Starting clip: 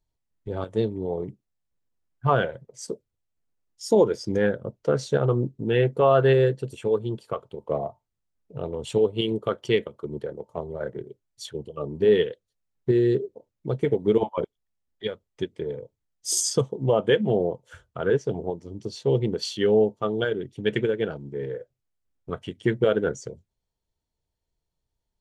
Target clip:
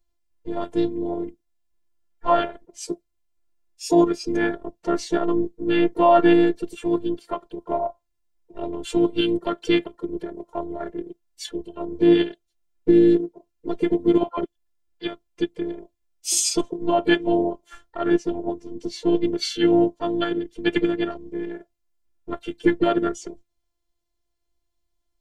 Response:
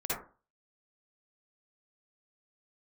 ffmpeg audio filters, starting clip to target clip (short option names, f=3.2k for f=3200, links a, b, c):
-filter_complex "[0:a]afftfilt=real='hypot(re,im)*cos(PI*b)':imag='0':win_size=512:overlap=0.75,asplit=4[a][b][c][d];[b]asetrate=22050,aresample=44100,atempo=2,volume=-16dB[e];[c]asetrate=37084,aresample=44100,atempo=1.18921,volume=-16dB[f];[d]asetrate=58866,aresample=44100,atempo=0.749154,volume=-17dB[g];[a][e][f][g]amix=inputs=4:normalize=0,volume=6.5dB"